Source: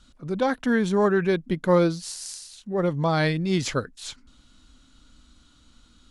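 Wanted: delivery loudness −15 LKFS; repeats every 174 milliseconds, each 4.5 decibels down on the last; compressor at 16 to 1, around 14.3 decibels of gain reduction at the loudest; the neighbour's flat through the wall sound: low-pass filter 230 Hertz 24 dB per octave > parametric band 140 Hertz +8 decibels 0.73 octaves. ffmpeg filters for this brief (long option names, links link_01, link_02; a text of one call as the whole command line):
ffmpeg -i in.wav -af "acompressor=threshold=-29dB:ratio=16,lowpass=frequency=230:width=0.5412,lowpass=frequency=230:width=1.3066,equalizer=frequency=140:width_type=o:width=0.73:gain=8,aecho=1:1:174|348|522|696|870|1044|1218|1392|1566:0.596|0.357|0.214|0.129|0.0772|0.0463|0.0278|0.0167|0.01,volume=18dB" out.wav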